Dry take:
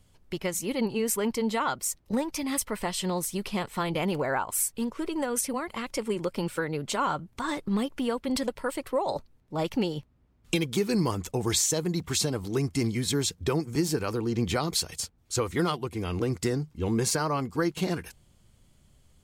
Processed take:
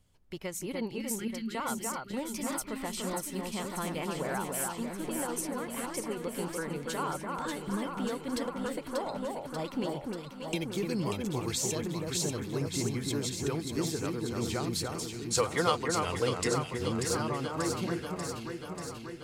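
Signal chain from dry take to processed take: 0.98–1.55 s: inverse Chebyshev band-stop 480–1000 Hz, stop band 40 dB; 15.18–16.48 s: time-frequency box 450–11000 Hz +9 dB; echo whose repeats swap between lows and highs 294 ms, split 2.1 kHz, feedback 82%, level -3 dB; trim -7.5 dB

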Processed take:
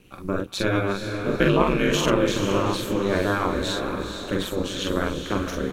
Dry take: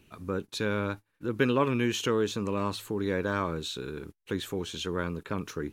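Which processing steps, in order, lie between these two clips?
doubling 44 ms -3 dB; ring modulator 98 Hz; echo that smears into a reverb 456 ms, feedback 43%, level -6.5 dB; trim +7.5 dB

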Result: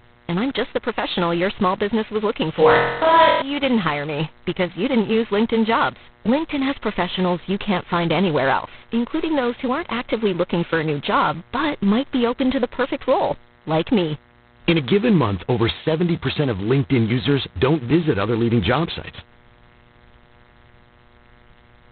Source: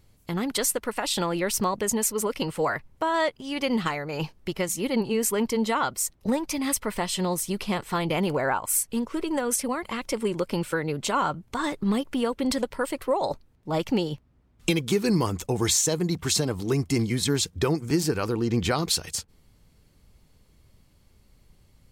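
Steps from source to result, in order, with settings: mains buzz 120 Hz, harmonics 18, -59 dBFS -2 dB/octave; 2.51–3.42 s: flutter echo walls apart 4 m, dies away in 0.9 s; in parallel at -11 dB: word length cut 6-bit, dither none; on the sum: trim +4.5 dB; G.726 16 kbps 8 kHz

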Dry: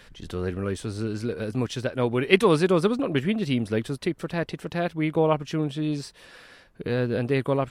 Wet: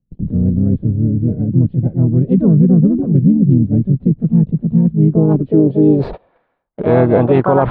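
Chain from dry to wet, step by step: low-pass sweep 170 Hz -> 900 Hz, 4.93–6.47 s; harmony voices -4 st -15 dB, +5 st -7 dB; resonant high shelf 5 kHz -8.5 dB, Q 3; gate -43 dBFS, range -41 dB; reverse; upward compressor, threshold -23 dBFS; reverse; loudness maximiser +13.5 dB; trim -1 dB

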